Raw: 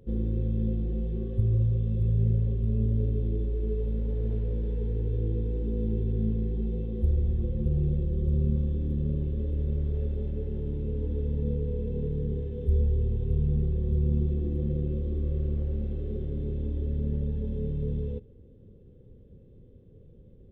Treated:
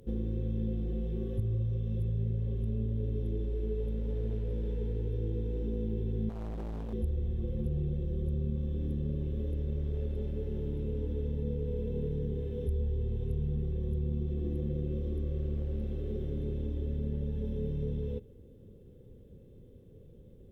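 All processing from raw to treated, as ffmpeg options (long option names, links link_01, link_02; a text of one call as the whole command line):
ffmpeg -i in.wav -filter_complex "[0:a]asettb=1/sr,asplit=3[link_01][link_02][link_03];[link_01]atrim=end=6.294[link_04];[link_02]atrim=start=6.29:end=6.93,asetpts=PTS-STARTPTS,afade=type=in:duration=0.004:curve=qsin,afade=type=out:start_time=0.636:duration=0.004:curve=qsin,equalizer=frequency=590:width=4.5:gain=-5.5,asoftclip=type=hard:threshold=-34dB[link_05];[link_03]atrim=start=6.926[link_06];[link_04][link_05]acrossfade=duration=0.004:curve1=hsin:curve2=qsin[link_07];[link_07][link_06]acrossfade=duration=0.004:curve1=qsin:curve2=hsin,aemphasis=mode=production:type=cd,acompressor=threshold=-29dB:ratio=2.5,lowshelf=frequency=240:gain=-4,volume=2dB" out.wav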